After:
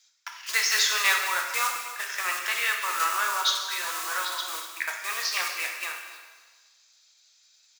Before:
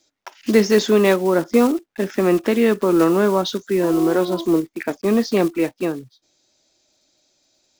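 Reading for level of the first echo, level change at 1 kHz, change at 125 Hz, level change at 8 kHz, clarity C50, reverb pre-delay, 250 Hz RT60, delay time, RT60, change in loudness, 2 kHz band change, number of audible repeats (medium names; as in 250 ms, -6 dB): -15.0 dB, -2.0 dB, under -40 dB, +6.0 dB, 4.0 dB, 5 ms, 1.4 s, 246 ms, 1.4 s, -7.5 dB, +3.5 dB, 1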